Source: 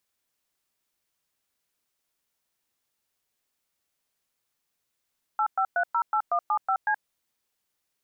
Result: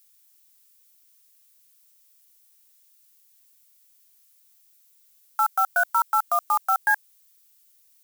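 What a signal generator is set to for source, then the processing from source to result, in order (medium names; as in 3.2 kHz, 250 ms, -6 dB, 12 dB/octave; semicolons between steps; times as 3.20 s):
DTMF "85308175C", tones 75 ms, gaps 110 ms, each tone -24 dBFS
in parallel at -6 dB: bit crusher 7-bit; on the sum: tilt EQ +5.5 dB/octave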